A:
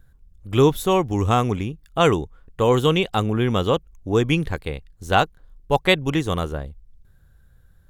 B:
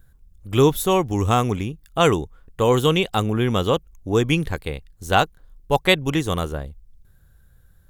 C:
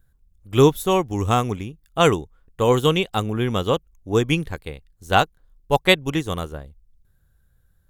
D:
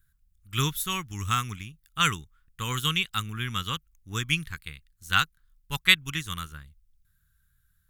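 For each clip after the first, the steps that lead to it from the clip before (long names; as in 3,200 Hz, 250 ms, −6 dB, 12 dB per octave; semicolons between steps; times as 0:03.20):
high-shelf EQ 7,100 Hz +8 dB
expander for the loud parts 1.5 to 1, over −31 dBFS; level +2 dB
drawn EQ curve 160 Hz 0 dB, 640 Hz −23 dB, 1,300 Hz +7 dB, 7,000 Hz +8 dB, 16,000 Hz +11 dB; level −8 dB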